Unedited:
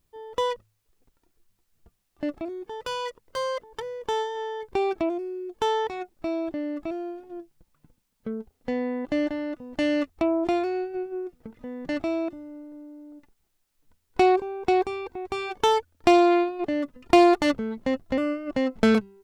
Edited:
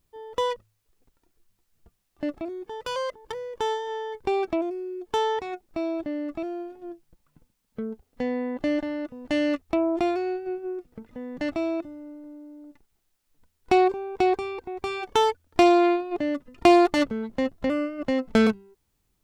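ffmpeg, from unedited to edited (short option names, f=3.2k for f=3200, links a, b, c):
-filter_complex "[0:a]asplit=2[a][b];[a]atrim=end=2.962[c];[b]atrim=start=3.438[d];[c][d]acrossfade=d=0.004:c1=hsin:c2=hsin"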